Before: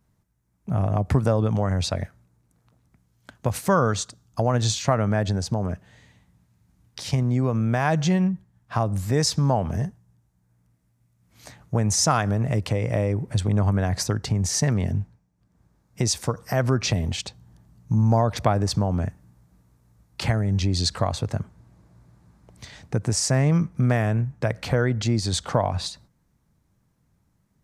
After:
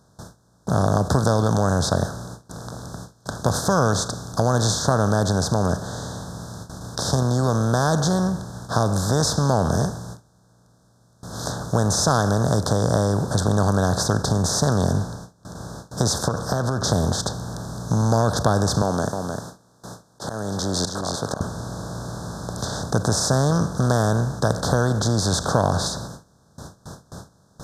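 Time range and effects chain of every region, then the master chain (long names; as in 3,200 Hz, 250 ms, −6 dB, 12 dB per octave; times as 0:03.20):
0:16.28–0:16.84: high-shelf EQ 5,100 Hz −11 dB + downward compressor, threshold −26 dBFS
0:18.82–0:21.41: high-pass filter 280 Hz + volume swells 499 ms + single-tap delay 306 ms −13.5 dB
whole clip: compressor on every frequency bin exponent 0.4; noise gate with hold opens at −22 dBFS; elliptic band-stop filter 1,600–3,600 Hz, stop band 50 dB; level −3 dB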